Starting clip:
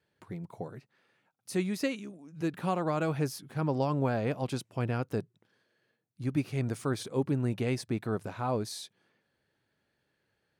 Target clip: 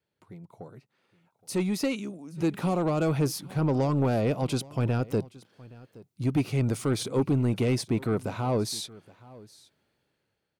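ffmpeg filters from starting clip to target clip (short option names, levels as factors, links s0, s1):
-filter_complex "[0:a]asoftclip=type=tanh:threshold=0.0562,equalizer=f=1700:w=6.8:g=-8,acrossover=split=620|3800[s0][s1][s2];[s1]alimiter=level_in=3.76:limit=0.0631:level=0:latency=1,volume=0.266[s3];[s0][s3][s2]amix=inputs=3:normalize=0,dynaudnorm=f=540:g=5:m=4.47,aecho=1:1:820:0.0841,volume=0.531"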